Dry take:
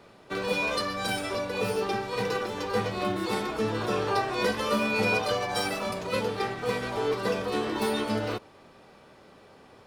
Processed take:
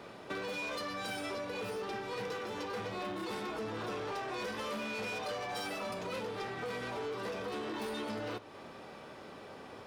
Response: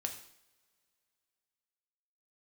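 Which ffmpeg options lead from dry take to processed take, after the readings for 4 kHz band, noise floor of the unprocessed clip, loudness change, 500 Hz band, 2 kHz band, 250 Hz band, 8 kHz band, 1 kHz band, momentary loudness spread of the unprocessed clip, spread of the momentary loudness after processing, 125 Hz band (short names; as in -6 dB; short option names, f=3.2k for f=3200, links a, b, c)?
-9.5 dB, -54 dBFS, -10.0 dB, -10.0 dB, -9.5 dB, -10.5 dB, -10.0 dB, -9.5 dB, 5 LU, 12 LU, -12.0 dB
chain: -filter_complex "[0:a]asoftclip=type=tanh:threshold=-28.5dB,lowshelf=f=67:g=-11.5,acompressor=threshold=-42dB:ratio=6,bandreject=f=4.3k:w=28,asplit=2[a][b];[1:a]atrim=start_sample=2205,lowpass=7k[c];[b][c]afir=irnorm=-1:irlink=0,volume=-8dB[d];[a][d]amix=inputs=2:normalize=0,volume=2dB"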